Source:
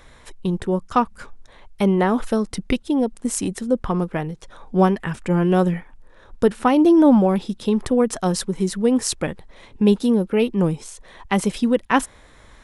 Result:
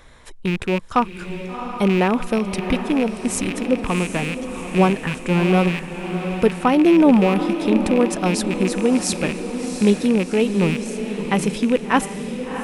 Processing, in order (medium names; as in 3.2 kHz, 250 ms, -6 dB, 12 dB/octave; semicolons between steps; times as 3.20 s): rattle on loud lows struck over -33 dBFS, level -17 dBFS; echo that smears into a reverb 717 ms, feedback 54%, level -8.5 dB